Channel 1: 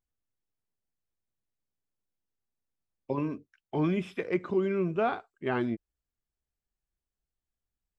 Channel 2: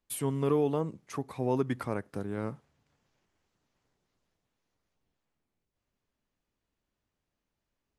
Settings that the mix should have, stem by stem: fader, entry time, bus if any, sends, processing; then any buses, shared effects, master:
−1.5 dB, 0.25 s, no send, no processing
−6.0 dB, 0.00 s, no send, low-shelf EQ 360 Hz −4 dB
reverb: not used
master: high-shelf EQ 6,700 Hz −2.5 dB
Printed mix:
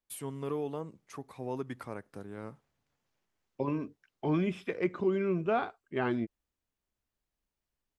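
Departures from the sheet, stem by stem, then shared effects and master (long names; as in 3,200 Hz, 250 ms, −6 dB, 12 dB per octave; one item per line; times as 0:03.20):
stem 1: entry 0.25 s → 0.50 s
master: missing high-shelf EQ 6,700 Hz −2.5 dB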